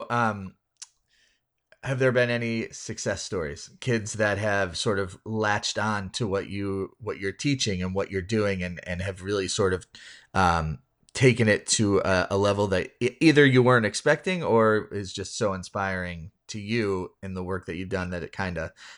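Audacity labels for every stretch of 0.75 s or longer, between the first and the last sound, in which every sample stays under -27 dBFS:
0.830000	1.850000	silence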